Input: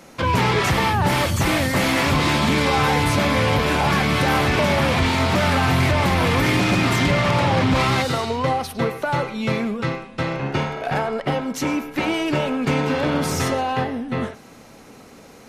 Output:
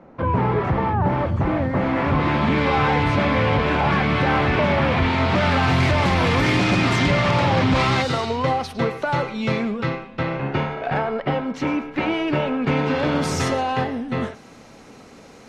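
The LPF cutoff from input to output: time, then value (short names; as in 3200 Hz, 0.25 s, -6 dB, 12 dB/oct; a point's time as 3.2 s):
1.69 s 1100 Hz
2.73 s 2800 Hz
5.07 s 2800 Hz
5.85 s 6200 Hz
9.48 s 6200 Hz
10.3 s 3000 Hz
12.67 s 3000 Hz
13.26 s 7900 Hz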